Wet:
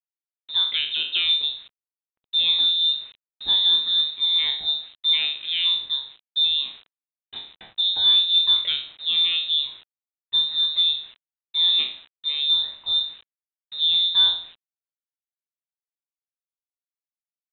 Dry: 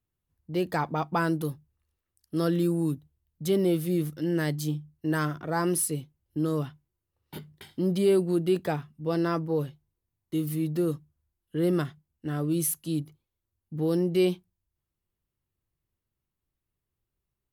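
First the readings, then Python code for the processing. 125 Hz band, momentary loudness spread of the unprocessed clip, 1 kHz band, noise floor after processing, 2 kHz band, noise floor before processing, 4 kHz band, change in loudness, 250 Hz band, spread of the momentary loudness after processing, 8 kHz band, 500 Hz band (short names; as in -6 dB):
under -25 dB, 14 LU, under -10 dB, under -85 dBFS, +3.0 dB, under -85 dBFS, +29.0 dB, +9.0 dB, under -25 dB, 12 LU, under -40 dB, under -25 dB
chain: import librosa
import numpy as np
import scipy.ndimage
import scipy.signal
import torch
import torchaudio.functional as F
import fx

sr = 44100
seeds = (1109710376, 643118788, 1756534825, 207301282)

y = fx.spec_trails(x, sr, decay_s=0.45)
y = scipy.signal.sosfilt(scipy.signal.butter(2, 150.0, 'highpass', fs=sr, output='sos'), y)
y = fx.peak_eq(y, sr, hz=300.0, db=8.5, octaves=0.82)
y = fx.quant_dither(y, sr, seeds[0], bits=8, dither='none')
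y = fx.freq_invert(y, sr, carrier_hz=3900)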